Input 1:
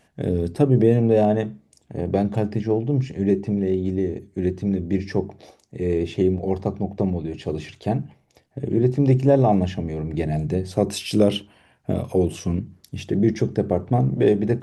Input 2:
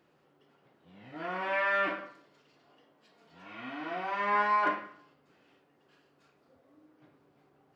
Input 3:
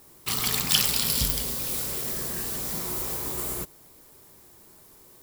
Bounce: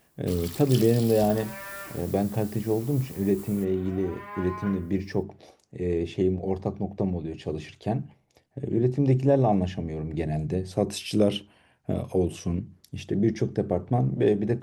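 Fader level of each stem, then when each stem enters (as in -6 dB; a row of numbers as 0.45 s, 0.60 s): -4.5 dB, -11.5 dB, -14.5 dB; 0.00 s, 0.00 s, 0.00 s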